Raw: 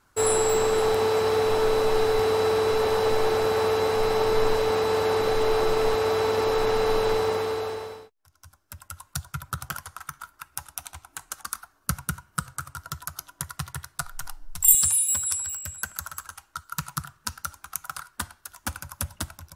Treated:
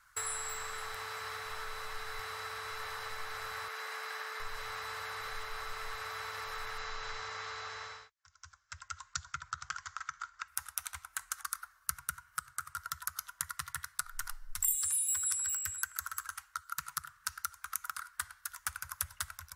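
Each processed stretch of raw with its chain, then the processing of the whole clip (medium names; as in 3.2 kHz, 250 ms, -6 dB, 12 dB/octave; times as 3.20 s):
3.68–4.40 s: high-pass 250 Hz 24 dB/octave + transformer saturation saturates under 920 Hz
6.78–10.48 s: steep low-pass 7.5 kHz 96 dB/octave + tone controls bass 0 dB, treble +3 dB
whole clip: high-order bell 1.5 kHz +9 dB 1.2 oct; compression, threshold -29 dBFS; amplifier tone stack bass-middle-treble 10-0-10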